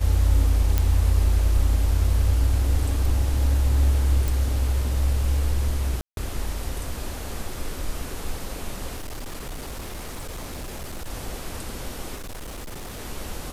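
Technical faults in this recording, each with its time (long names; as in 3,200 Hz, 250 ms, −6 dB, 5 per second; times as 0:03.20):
0:00.78: click −8 dBFS
0:04.28: click
0:06.01–0:06.17: drop-out 162 ms
0:08.96–0:11.10: clipping −29.5 dBFS
0:12.15–0:13.00: clipping −32 dBFS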